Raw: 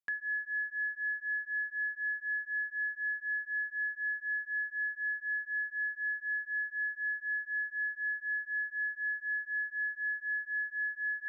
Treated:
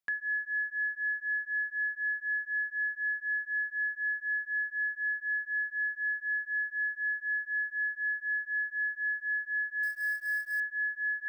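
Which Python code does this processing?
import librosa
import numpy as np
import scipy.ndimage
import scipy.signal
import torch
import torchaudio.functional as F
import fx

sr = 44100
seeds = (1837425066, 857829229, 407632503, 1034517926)

y = fx.quant_float(x, sr, bits=2, at=(9.83, 10.6))
y = y * 10.0 ** (2.5 / 20.0)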